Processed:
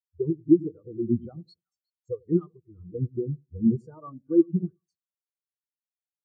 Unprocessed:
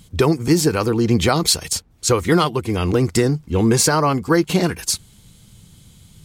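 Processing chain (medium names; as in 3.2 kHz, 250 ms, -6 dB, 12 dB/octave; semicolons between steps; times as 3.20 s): two-band feedback delay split 860 Hz, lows 95 ms, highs 363 ms, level -8 dB; spectral contrast expander 4:1; trim -3.5 dB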